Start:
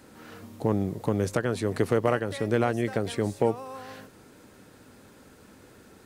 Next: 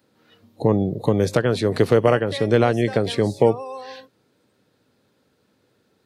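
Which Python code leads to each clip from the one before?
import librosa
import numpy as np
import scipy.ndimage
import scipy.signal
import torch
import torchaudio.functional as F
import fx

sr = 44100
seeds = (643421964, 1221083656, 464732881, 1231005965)

y = scipy.signal.sosfilt(scipy.signal.butter(2, 91.0, 'highpass', fs=sr, output='sos'), x)
y = fx.noise_reduce_blind(y, sr, reduce_db=19)
y = fx.graphic_eq_10(y, sr, hz=(125, 500, 4000, 8000), db=(5, 4, 8, -4))
y = y * 10.0 ** (4.5 / 20.0)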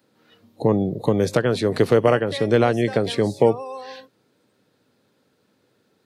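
y = scipy.signal.sosfilt(scipy.signal.butter(2, 100.0, 'highpass', fs=sr, output='sos'), x)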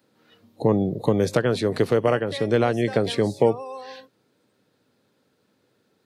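y = fx.rider(x, sr, range_db=10, speed_s=0.5)
y = y * 10.0 ** (-2.0 / 20.0)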